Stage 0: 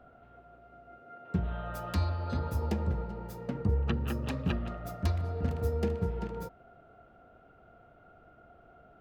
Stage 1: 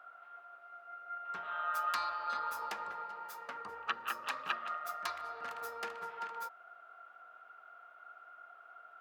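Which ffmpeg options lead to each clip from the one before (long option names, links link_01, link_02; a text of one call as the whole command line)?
ffmpeg -i in.wav -af "highpass=frequency=1200:width_type=q:width=2.7,volume=1dB" out.wav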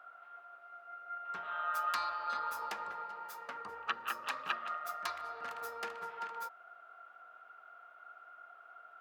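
ffmpeg -i in.wav -af anull out.wav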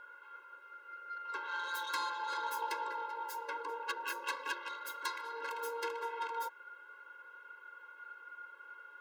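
ffmpeg -i in.wav -af "asoftclip=type=tanh:threshold=-35.5dB,afftfilt=real='re*eq(mod(floor(b*sr/1024/280),2),1)':imag='im*eq(mod(floor(b*sr/1024/280),2),1)':win_size=1024:overlap=0.75,volume=8.5dB" out.wav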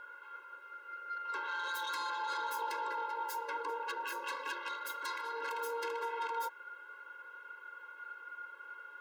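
ffmpeg -i in.wav -af "alimiter=level_in=9dB:limit=-24dB:level=0:latency=1:release=21,volume=-9dB,volume=3dB" out.wav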